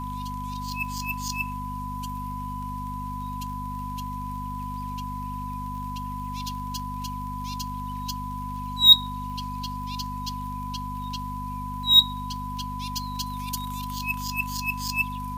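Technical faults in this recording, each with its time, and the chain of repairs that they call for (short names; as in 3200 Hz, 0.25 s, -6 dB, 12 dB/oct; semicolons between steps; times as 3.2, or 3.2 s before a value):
crackle 27/s -37 dBFS
hum 50 Hz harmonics 5 -35 dBFS
tone 1000 Hz -33 dBFS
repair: de-click; de-hum 50 Hz, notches 5; notch 1000 Hz, Q 30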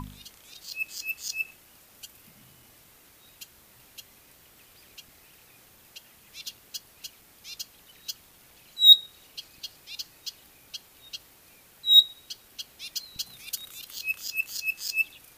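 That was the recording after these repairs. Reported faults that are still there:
none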